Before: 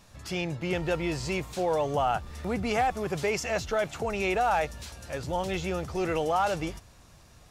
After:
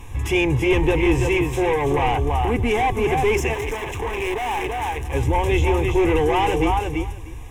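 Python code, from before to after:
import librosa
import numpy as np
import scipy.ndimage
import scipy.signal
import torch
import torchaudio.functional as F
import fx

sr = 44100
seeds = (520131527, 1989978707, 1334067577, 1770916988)

p1 = x + 10.0 ** (-6.5 / 20.0) * np.pad(x, (int(333 * sr / 1000.0), 0))[:len(x)]
p2 = fx.fold_sine(p1, sr, drive_db=12, ceiling_db=-14.0)
p3 = p1 + (p2 * 10.0 ** (-10.5 / 20.0))
p4 = fx.rider(p3, sr, range_db=10, speed_s=2.0)
p5 = fx.bass_treble(p4, sr, bass_db=11, treble_db=-4)
p6 = fx.notch(p5, sr, hz=1800.0, q=13.0)
p7 = p6 + 10.0 ** (-17.0 / 20.0) * np.pad(p6, (int(306 * sr / 1000.0), 0))[:len(p6)]
p8 = fx.clip_hard(p7, sr, threshold_db=-24.5, at=(3.54, 5.14))
p9 = fx.low_shelf(p8, sr, hz=250.0, db=-3.5)
p10 = fx.fixed_phaser(p9, sr, hz=920.0, stages=8)
y = p10 * 10.0 ** (5.0 / 20.0)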